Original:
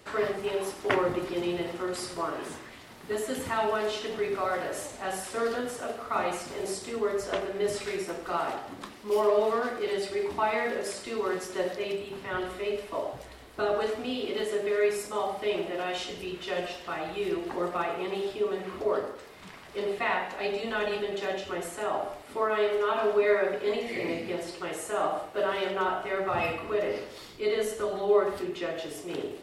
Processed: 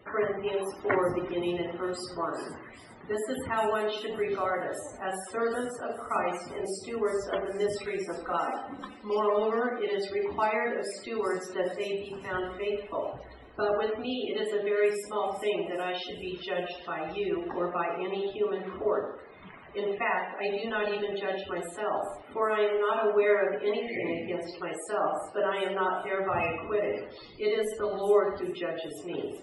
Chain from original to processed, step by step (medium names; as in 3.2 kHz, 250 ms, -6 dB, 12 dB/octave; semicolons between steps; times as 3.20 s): 8.21–9.81 s: comb 3.9 ms, depth 47%; loudest bins only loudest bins 64; on a send: feedback echo behind a high-pass 400 ms, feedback 39%, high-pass 5.1 kHz, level -8 dB